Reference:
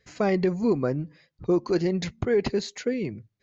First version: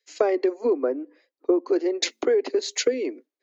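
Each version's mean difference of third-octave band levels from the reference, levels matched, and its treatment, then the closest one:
6.5 dB: Butterworth high-pass 260 Hz 96 dB per octave
parametric band 470 Hz +6.5 dB 1.3 octaves
downward compressor 6 to 1, threshold −28 dBFS, peak gain reduction 14.5 dB
multiband upward and downward expander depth 100%
level +8 dB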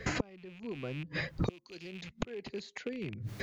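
9.5 dB: loose part that buzzes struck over −33 dBFS, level −24 dBFS
dynamic equaliser 3,400 Hz, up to +6 dB, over −51 dBFS, Q 1.6
gate with flip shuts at −27 dBFS, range −41 dB
multiband upward and downward compressor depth 100%
level +16 dB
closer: first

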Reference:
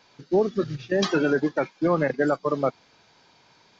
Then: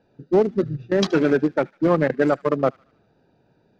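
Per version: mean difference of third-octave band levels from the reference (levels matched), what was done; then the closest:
3.0 dB: adaptive Wiener filter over 41 samples
delay with a high-pass on its return 75 ms, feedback 50%, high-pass 1,700 Hz, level −21 dB
level +4.5 dB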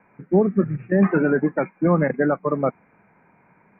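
5.0 dB: Butterworth low-pass 2,400 Hz 96 dB per octave
parametric band 190 Hz +10.5 dB 0.57 octaves
level +1.5 dB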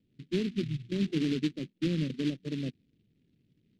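9.0 dB: inverse Chebyshev low-pass filter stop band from 1,300 Hz, stop band 70 dB
short delay modulated by noise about 2,800 Hz, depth 0.096 ms
level −1 dB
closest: first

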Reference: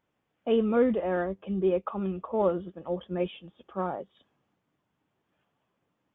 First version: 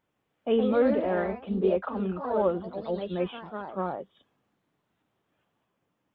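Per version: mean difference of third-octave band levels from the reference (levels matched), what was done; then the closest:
3.5 dB: delay with pitch and tempo change per echo 170 ms, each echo +2 semitones, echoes 3, each echo −6 dB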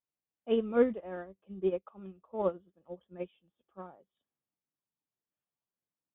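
5.5 dB: expander for the loud parts 2.5 to 1, over −35 dBFS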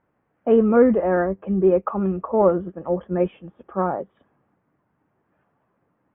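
1.5 dB: low-pass filter 1,900 Hz 24 dB per octave
level +8.5 dB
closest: third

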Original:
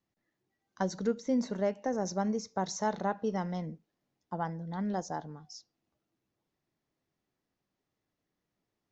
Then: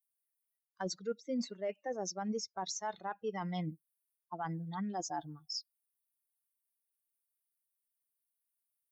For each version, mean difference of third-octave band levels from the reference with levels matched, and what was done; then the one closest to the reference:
6.0 dB: spectral dynamics exaggerated over time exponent 2
high-pass filter 600 Hz 6 dB per octave
reversed playback
downward compressor 8 to 1, threshold −50 dBFS, peak gain reduction 19.5 dB
reversed playback
brickwall limiter −44.5 dBFS, peak gain reduction 6.5 dB
level +16.5 dB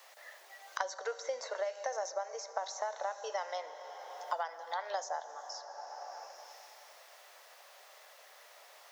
13.5 dB: elliptic high-pass filter 560 Hz, stop band 60 dB
downward compressor, threshold −34 dBFS, peak gain reduction 7.5 dB
dense smooth reverb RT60 2.2 s, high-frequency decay 0.95×, DRR 12 dB
multiband upward and downward compressor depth 100%
level +2.5 dB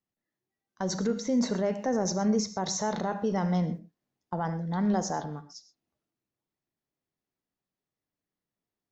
3.5 dB: noise gate −46 dBFS, range −14 dB
brickwall limiter −25.5 dBFS, peak gain reduction 8 dB
transient designer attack −1 dB, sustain +4 dB
reverb whose tail is shaped and stops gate 150 ms flat, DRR 11 dB
level +6.5 dB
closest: third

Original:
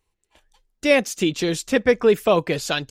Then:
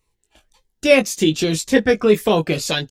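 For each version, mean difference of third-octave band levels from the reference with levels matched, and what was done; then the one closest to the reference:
2.5 dB: double-tracking delay 19 ms −6 dB
phaser whose notches keep moving one way falling 1.9 Hz
level +4 dB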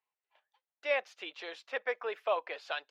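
9.5 dB: high-pass filter 630 Hz 24 dB per octave
high-frequency loss of the air 330 metres
level −8 dB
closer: first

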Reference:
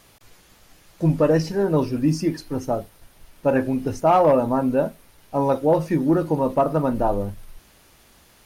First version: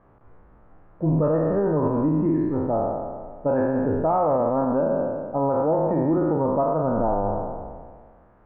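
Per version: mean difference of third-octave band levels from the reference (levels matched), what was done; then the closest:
10.0 dB: peak hold with a decay on every bin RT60 1.73 s
low-pass filter 1,300 Hz 24 dB per octave
brickwall limiter −12.5 dBFS, peak gain reduction 8.5 dB
level −1.5 dB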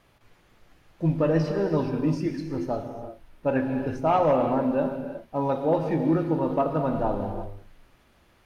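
5.5 dB: bass and treble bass +1 dB, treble −13 dB
reverb whose tail is shaped and stops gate 390 ms flat, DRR 4.5 dB
dynamic equaliser 3,700 Hz, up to +7 dB, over −45 dBFS, Q 1
level −6 dB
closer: second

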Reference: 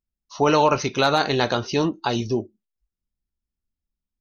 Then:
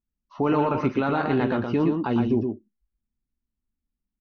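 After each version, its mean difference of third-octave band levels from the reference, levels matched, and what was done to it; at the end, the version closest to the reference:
7.0 dB: graphic EQ with 15 bands 250 Hz +7 dB, 630 Hz −4 dB, 4,000 Hz −8 dB
brickwall limiter −13 dBFS, peak gain reduction 6.5 dB
high-frequency loss of the air 400 metres
on a send: single-tap delay 118 ms −5 dB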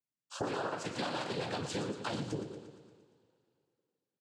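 10.0 dB: coupled-rooms reverb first 0.57 s, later 2.7 s, from −25 dB, DRR 7 dB
cochlear-implant simulation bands 8
downward compressor 10 to 1, threshold −28 dBFS, peak gain reduction 16.5 dB
repeating echo 116 ms, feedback 60%, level −11 dB
level −5.5 dB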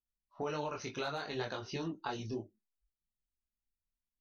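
3.0 dB: low-pass that shuts in the quiet parts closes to 490 Hz, open at −19.5 dBFS
parametric band 1,600 Hz +3.5 dB 0.48 octaves
downward compressor, threshold −24 dBFS, peak gain reduction 11 dB
multi-voice chorus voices 4, 0.62 Hz, delay 23 ms, depth 4.7 ms
level −8 dB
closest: third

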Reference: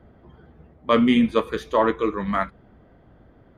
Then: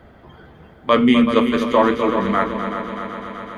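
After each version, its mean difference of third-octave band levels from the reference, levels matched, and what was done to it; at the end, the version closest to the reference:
7.0 dB: hum removal 57.67 Hz, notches 8
on a send: echo machine with several playback heads 126 ms, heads second and third, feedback 64%, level −9.5 dB
on the sum: one half of a high-frequency compander encoder only
level +4 dB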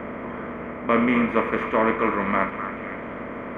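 10.5 dB: compressor on every frequency bin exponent 0.4
high shelf with overshoot 2,900 Hz −10 dB, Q 3
on a send: echo through a band-pass that steps 254 ms, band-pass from 1,300 Hz, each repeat 0.7 octaves, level −7 dB
on the sum: level −6 dB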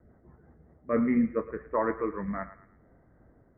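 3.0 dB: Butterworth low-pass 2,100 Hz 72 dB per octave
rotating-speaker cabinet horn 5.5 Hz, later 0.85 Hz, at 0:00.38
on a send: feedback echo with a high-pass in the loop 111 ms, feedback 44%, high-pass 800 Hz, level −12.5 dB
on the sum: level −6 dB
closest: third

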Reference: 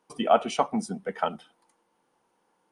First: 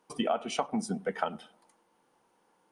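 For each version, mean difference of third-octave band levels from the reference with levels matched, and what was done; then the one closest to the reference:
4.0 dB: downward compressor 12 to 1, threshold −27 dBFS, peak gain reduction 13.5 dB
on a send: tape delay 101 ms, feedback 53%, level −23 dB, low-pass 1,200 Hz
on the sum: level +1.5 dB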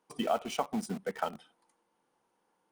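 6.5 dB: downward compressor 2.5 to 1, threshold −28 dBFS, peak gain reduction 9.5 dB
in parallel at −7 dB: bit reduction 6 bits
on the sum: level −5 dB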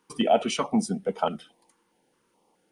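3.0 dB: in parallel at −2 dB: brickwall limiter −17.5 dBFS, peak gain reduction 10.5 dB
on the sum: notch on a step sequencer 4.7 Hz 660–1,800 Hz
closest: third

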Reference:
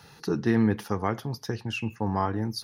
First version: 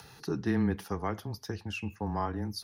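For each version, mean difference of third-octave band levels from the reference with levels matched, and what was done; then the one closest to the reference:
2.0 dB: high-shelf EQ 8,900 Hz +4 dB
upward compression, threshold −41 dBFS
frequency shifter −15 Hz
level −5.5 dB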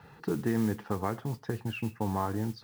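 6.5 dB: low-pass filter 2,000 Hz 12 dB per octave
downward compressor 2 to 1, threshold −29 dBFS, peak gain reduction 6.5 dB
noise that follows the level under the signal 21 dB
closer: first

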